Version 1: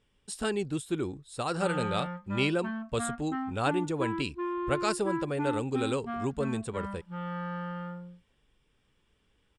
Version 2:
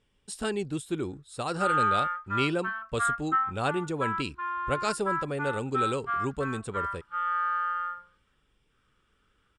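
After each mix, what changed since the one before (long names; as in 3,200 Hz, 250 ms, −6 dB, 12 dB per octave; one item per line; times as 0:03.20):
background: add high-pass with resonance 1,300 Hz, resonance Q 7.1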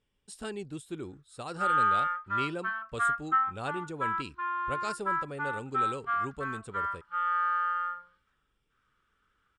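speech −7.5 dB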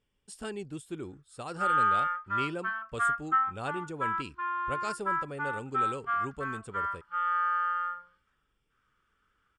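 master: add notch filter 3,900 Hz, Q 9.1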